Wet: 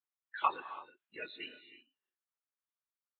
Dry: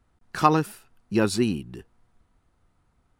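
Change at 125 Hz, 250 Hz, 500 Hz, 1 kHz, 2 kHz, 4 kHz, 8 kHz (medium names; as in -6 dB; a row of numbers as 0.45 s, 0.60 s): under -40 dB, -33.5 dB, -23.0 dB, -11.0 dB, -9.5 dB, -12.5 dB, under -40 dB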